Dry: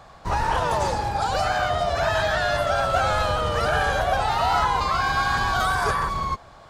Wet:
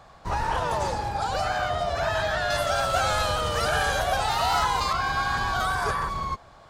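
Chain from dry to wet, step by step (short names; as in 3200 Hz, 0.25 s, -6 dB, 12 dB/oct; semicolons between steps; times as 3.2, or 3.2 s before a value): 2.5–4.93 high shelf 3600 Hz +11 dB; gain -3.5 dB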